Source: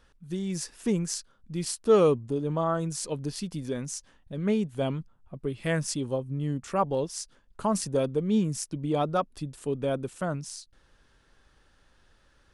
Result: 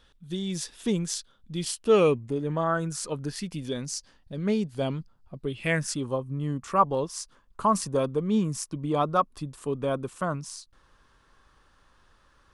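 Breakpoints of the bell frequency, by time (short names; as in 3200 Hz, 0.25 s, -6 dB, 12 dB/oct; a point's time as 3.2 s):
bell +11 dB 0.41 oct
1.54 s 3500 Hz
3.15 s 1200 Hz
3.88 s 4700 Hz
5.35 s 4700 Hz
6.04 s 1100 Hz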